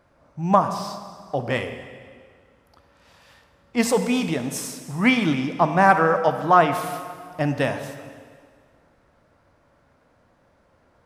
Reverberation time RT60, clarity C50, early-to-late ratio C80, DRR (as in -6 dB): 1.9 s, 9.0 dB, 10.0 dB, 7.5 dB